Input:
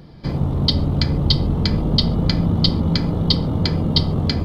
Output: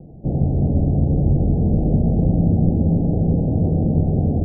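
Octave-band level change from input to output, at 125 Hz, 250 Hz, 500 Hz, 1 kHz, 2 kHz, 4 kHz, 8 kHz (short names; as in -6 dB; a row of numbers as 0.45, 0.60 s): +2.0 dB, +2.0 dB, +2.0 dB, -3.5 dB, under -40 dB, under -40 dB, n/a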